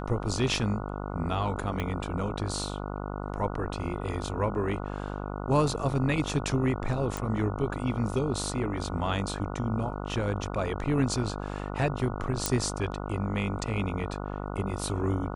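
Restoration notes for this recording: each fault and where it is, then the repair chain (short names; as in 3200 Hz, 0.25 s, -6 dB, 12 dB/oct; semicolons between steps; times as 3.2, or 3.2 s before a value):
buzz 50 Hz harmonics 29 -35 dBFS
1.8 pop -18 dBFS
7.17 pop
12.46 pop -9 dBFS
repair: de-click; de-hum 50 Hz, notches 29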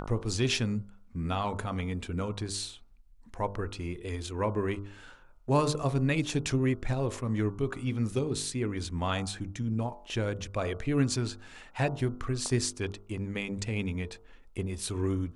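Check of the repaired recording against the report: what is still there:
1.8 pop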